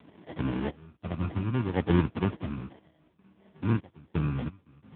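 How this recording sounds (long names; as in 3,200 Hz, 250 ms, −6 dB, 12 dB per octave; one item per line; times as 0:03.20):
phaser sweep stages 12, 0.61 Hz, lowest notch 470–1,600 Hz
sample-and-hold tremolo 2.9 Hz, depth 95%
aliases and images of a low sample rate 1,300 Hz, jitter 0%
AMR narrowband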